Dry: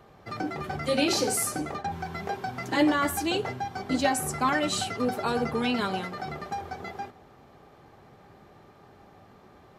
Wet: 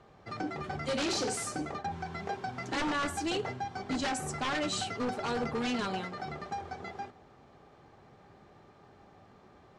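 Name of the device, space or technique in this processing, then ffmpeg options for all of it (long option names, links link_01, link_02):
synthesiser wavefolder: -af "aeval=exprs='0.0794*(abs(mod(val(0)/0.0794+3,4)-2)-1)':channel_layout=same,lowpass=frequency=8500:width=0.5412,lowpass=frequency=8500:width=1.3066,volume=-4dB"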